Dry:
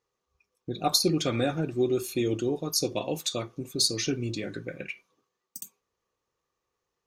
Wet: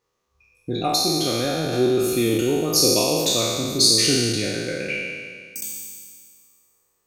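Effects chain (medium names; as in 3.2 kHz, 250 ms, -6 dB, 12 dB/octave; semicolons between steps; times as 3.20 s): spectral sustain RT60 1.88 s; 0.77–1.73 s: compression 2.5:1, threshold -26 dBFS, peak gain reduction 8 dB; trim +4.5 dB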